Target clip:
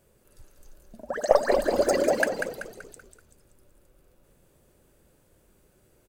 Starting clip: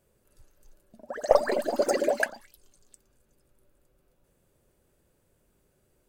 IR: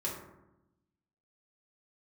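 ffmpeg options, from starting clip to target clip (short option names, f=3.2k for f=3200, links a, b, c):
-filter_complex "[0:a]asplit=2[a][b];[b]acompressor=threshold=-32dB:ratio=6,volume=1.5dB[c];[a][c]amix=inputs=2:normalize=0,asplit=6[d][e][f][g][h][i];[e]adelay=191,afreqshift=-39,volume=-6.5dB[j];[f]adelay=382,afreqshift=-78,volume=-13.6dB[k];[g]adelay=573,afreqshift=-117,volume=-20.8dB[l];[h]adelay=764,afreqshift=-156,volume=-27.9dB[m];[i]adelay=955,afreqshift=-195,volume=-35dB[n];[d][j][k][l][m][n]amix=inputs=6:normalize=0,volume=-1dB"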